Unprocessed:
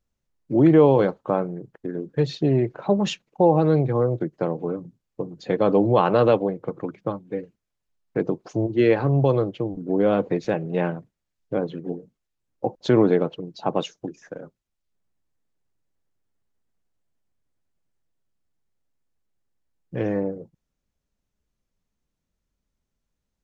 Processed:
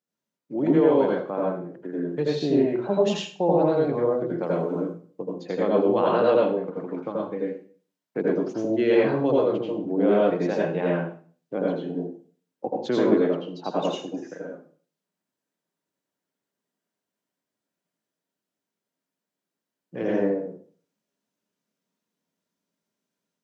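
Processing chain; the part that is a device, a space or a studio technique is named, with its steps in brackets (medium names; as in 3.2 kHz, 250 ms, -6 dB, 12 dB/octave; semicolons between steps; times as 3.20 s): 4.43–4.83 s: treble shelf 4 kHz +8.5 dB; far laptop microphone (reverberation RT60 0.45 s, pre-delay 78 ms, DRR -4 dB; high-pass 170 Hz 24 dB/octave; level rider gain up to 3 dB); trim -6.5 dB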